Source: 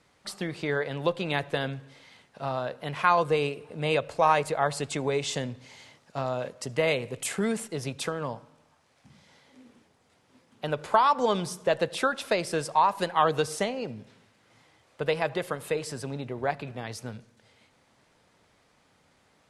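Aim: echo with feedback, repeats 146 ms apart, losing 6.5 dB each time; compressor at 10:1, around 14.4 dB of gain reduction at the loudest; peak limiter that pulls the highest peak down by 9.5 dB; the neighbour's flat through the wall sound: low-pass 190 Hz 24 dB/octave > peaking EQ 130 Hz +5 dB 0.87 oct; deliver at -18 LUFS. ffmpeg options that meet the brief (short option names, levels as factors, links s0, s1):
-af "acompressor=threshold=0.0282:ratio=10,alimiter=level_in=1.26:limit=0.0631:level=0:latency=1,volume=0.794,lowpass=f=190:w=0.5412,lowpass=f=190:w=1.3066,equalizer=f=130:t=o:w=0.87:g=5,aecho=1:1:146|292|438|584|730|876:0.473|0.222|0.105|0.0491|0.0231|0.0109,volume=16.8"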